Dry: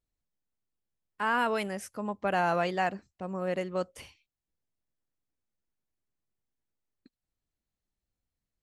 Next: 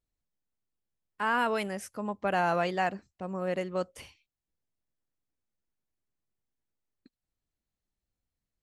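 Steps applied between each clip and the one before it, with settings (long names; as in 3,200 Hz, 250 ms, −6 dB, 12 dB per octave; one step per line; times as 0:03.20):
no processing that can be heard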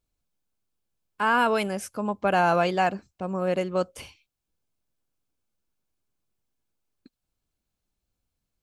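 notch filter 1,900 Hz, Q 7
level +6 dB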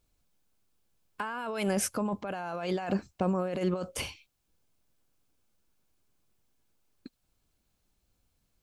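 compressor whose output falls as the input rises −32 dBFS, ratio −1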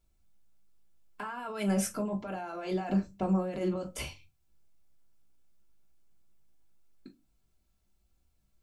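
convolution reverb RT60 0.20 s, pre-delay 3 ms, DRR 0.5 dB
level −6 dB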